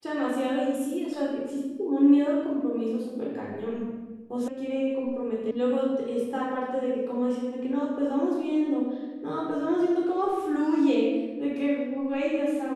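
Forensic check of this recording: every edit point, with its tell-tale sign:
4.48 s: sound stops dead
5.51 s: sound stops dead

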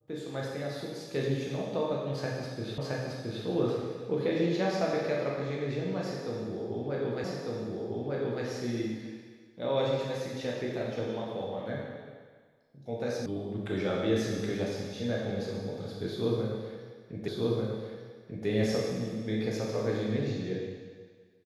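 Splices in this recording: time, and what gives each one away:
2.78 s: repeat of the last 0.67 s
7.24 s: repeat of the last 1.2 s
13.26 s: sound stops dead
17.28 s: repeat of the last 1.19 s

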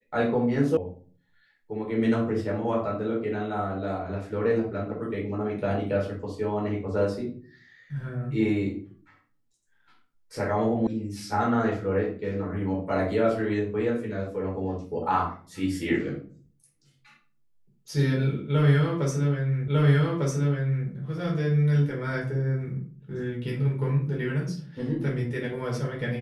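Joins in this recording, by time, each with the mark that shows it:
0.77 s: sound stops dead
10.87 s: sound stops dead
19.68 s: repeat of the last 1.2 s

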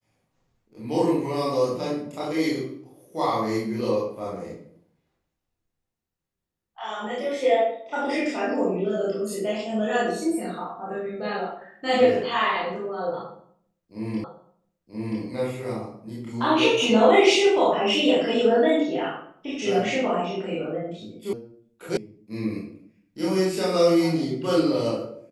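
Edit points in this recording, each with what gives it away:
14.24 s: repeat of the last 0.98 s
21.33 s: sound stops dead
21.97 s: sound stops dead

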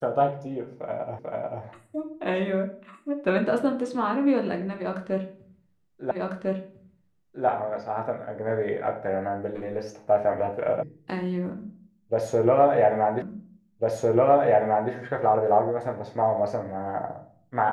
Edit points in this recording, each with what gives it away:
1.19 s: repeat of the last 0.44 s
6.11 s: repeat of the last 1.35 s
10.83 s: sound stops dead
13.22 s: repeat of the last 1.7 s

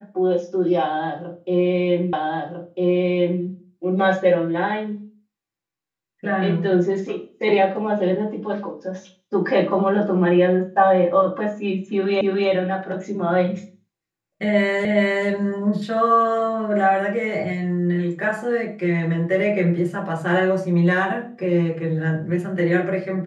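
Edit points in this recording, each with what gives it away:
2.13 s: repeat of the last 1.3 s
12.21 s: repeat of the last 0.29 s
14.85 s: repeat of the last 0.42 s

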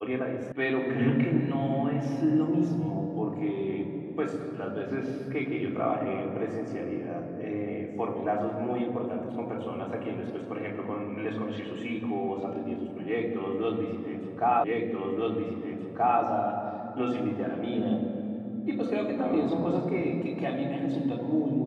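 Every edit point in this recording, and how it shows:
0.52 s: sound stops dead
14.64 s: repeat of the last 1.58 s

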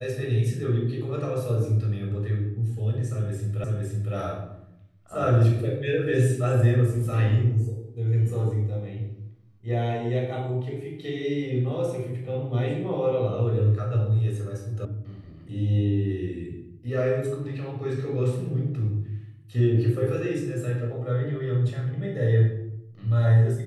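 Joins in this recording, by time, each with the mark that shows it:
3.64 s: repeat of the last 0.51 s
14.85 s: sound stops dead

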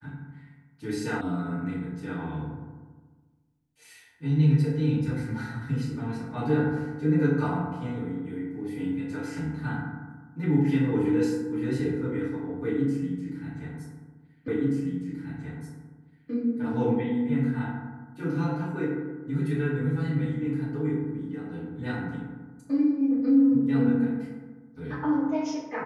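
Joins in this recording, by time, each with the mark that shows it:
1.21 s: sound stops dead
14.48 s: repeat of the last 1.83 s

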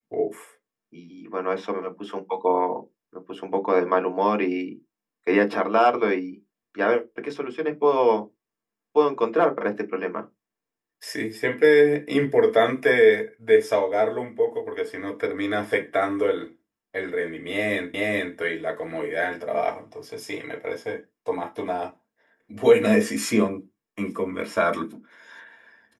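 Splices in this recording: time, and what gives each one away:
17.94 s: repeat of the last 0.43 s

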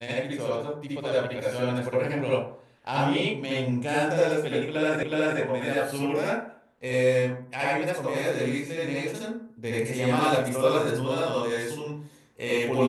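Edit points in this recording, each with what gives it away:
5.03 s: repeat of the last 0.37 s

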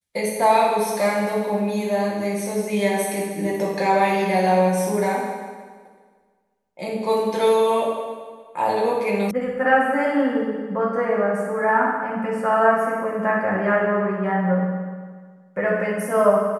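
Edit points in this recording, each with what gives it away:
9.31 s: sound stops dead

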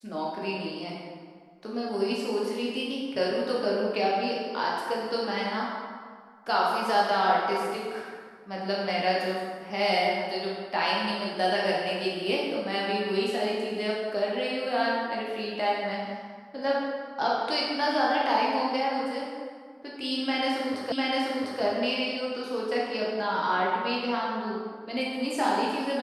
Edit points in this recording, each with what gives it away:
20.92 s: repeat of the last 0.7 s

